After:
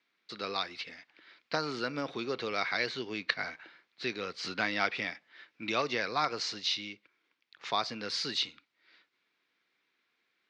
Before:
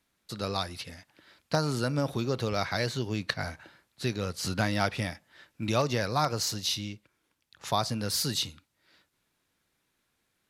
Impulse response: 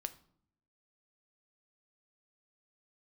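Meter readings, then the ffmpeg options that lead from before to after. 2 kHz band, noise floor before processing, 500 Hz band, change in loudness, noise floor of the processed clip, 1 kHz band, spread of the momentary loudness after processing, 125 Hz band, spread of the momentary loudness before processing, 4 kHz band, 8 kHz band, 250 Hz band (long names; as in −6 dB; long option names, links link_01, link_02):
+2.0 dB, −77 dBFS, −4.5 dB, −3.0 dB, −79 dBFS, −2.5 dB, 12 LU, −17.5 dB, 12 LU, −1.0 dB, −11.5 dB, −7.5 dB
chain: -af "highpass=360,equalizer=frequency=590:width_type=q:width=4:gain=-7,equalizer=frequency=860:width_type=q:width=4:gain=-5,equalizer=frequency=2200:width_type=q:width=4:gain=6,lowpass=frequency=4800:width=0.5412,lowpass=frequency=4800:width=1.3066"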